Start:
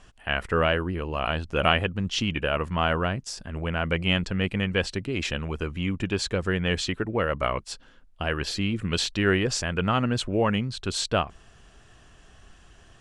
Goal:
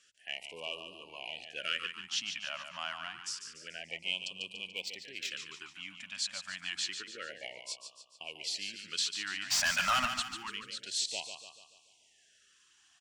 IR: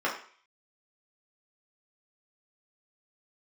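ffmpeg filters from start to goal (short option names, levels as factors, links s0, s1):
-filter_complex "[0:a]asplit=2[s0][s1];[s1]asoftclip=type=tanh:threshold=0.141,volume=0.398[s2];[s0][s2]amix=inputs=2:normalize=0,bandreject=f=55.44:t=h:w=4,bandreject=f=110.88:t=h:w=4,acrossover=split=100[s3][s4];[s3]acompressor=threshold=0.00501:ratio=6[s5];[s5][s4]amix=inputs=2:normalize=0,lowpass=6900,aderivative,asplit=3[s6][s7][s8];[s6]afade=t=out:st=9.5:d=0.02[s9];[s7]asplit=2[s10][s11];[s11]highpass=f=720:p=1,volume=35.5,asoftclip=type=tanh:threshold=0.126[s12];[s10][s12]amix=inputs=2:normalize=0,lowpass=f=4600:p=1,volume=0.501,afade=t=in:st=9.5:d=0.02,afade=t=out:st=10.06:d=0.02[s13];[s8]afade=t=in:st=10.06:d=0.02[s14];[s9][s13][s14]amix=inputs=3:normalize=0,aecho=1:1:145|290|435|580|725|870:0.398|0.195|0.0956|0.0468|0.023|0.0112,asettb=1/sr,asplit=3[s15][s16][s17];[s15]atrim=end=4.724[s18];[s16]atrim=start=4.72:end=5.31,asetpts=PTS-STARTPTS,afade=t=in:d=0.004:c=qsin,afade=t=out:st=0.586:d=0.004:c=qsin,adynamicsmooth=sensitivity=6.5:basefreq=5000[s19];[s17]atrim=start=5.306[s20];[s18][s19]acrossfade=d=0.004:c1=hsin:c2=qsin[s21];[s21][s20]acrossfade=d=0.004:c1=qsin:c2=hsin,afftfilt=real='re*(1-between(b*sr/1024,380*pow(1700/380,0.5+0.5*sin(2*PI*0.28*pts/sr))/1.41,380*pow(1700/380,0.5+0.5*sin(2*PI*0.28*pts/sr))*1.41))':imag='im*(1-between(b*sr/1024,380*pow(1700/380,0.5+0.5*sin(2*PI*0.28*pts/sr))/1.41,380*pow(1700/380,0.5+0.5*sin(2*PI*0.28*pts/sr))*1.41))':win_size=1024:overlap=0.75,volume=0.794"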